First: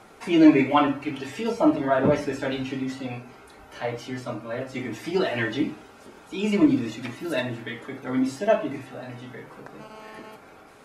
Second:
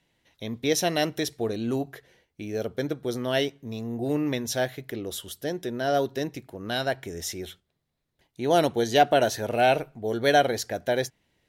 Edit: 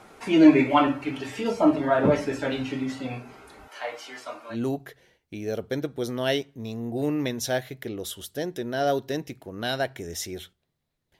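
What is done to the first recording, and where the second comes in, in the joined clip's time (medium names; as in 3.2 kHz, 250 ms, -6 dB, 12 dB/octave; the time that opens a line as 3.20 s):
first
3.68–4.57 s: high-pass 670 Hz 12 dB/octave
4.53 s: go over to second from 1.60 s, crossfade 0.08 s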